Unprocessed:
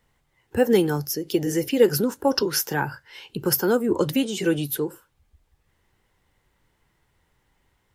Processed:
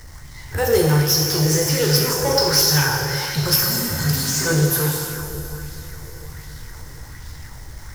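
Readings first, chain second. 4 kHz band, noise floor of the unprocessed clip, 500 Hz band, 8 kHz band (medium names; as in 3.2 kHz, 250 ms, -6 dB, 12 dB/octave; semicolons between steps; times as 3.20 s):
+11.5 dB, -70 dBFS, +0.5 dB, +11.5 dB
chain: spectral replace 3.60–4.38 s, 280–4200 Hz before; FFT filter 140 Hz 0 dB, 210 Hz -30 dB, 490 Hz -16 dB, 1.9 kHz -8 dB, 2.7 kHz -22 dB, 5.4 kHz +2 dB, 7.7 kHz -5 dB; power-law waveshaper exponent 0.5; on a send: echo that smears into a reverb 662 ms, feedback 46%, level -16 dB; on the sum: plate-style reverb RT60 2.1 s, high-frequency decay 0.9×, DRR -2.5 dB; sweeping bell 1.3 Hz 410–4200 Hz +6 dB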